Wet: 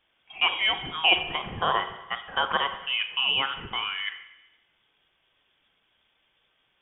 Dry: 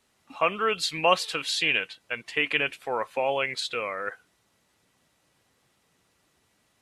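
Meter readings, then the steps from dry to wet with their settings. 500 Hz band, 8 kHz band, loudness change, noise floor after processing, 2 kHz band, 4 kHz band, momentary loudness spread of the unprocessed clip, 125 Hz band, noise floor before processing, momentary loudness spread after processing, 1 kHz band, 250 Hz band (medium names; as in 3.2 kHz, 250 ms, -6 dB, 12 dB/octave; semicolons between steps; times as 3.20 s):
-8.5 dB, under -40 dB, +1.0 dB, -71 dBFS, +0.5 dB, +6.0 dB, 9 LU, +1.0 dB, -70 dBFS, 11 LU, +0.5 dB, -4.5 dB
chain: Schroeder reverb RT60 1 s, combs from 32 ms, DRR 9 dB; frequency inversion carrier 3.5 kHz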